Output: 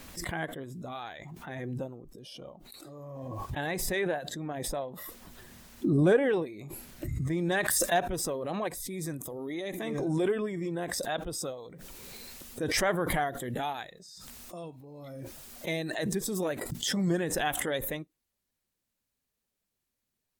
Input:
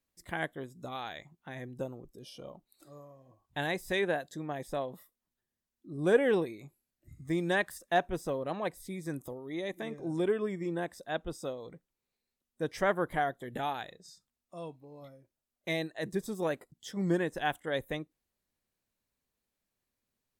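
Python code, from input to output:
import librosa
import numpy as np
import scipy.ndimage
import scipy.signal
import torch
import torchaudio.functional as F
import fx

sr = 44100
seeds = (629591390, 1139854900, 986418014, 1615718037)

y = fx.spec_quant(x, sr, step_db=15)
y = fx.high_shelf(y, sr, hz=3700.0, db=fx.steps((0.0, -5.0), (7.51, 3.5)))
y = fx.pre_swell(y, sr, db_per_s=21.0)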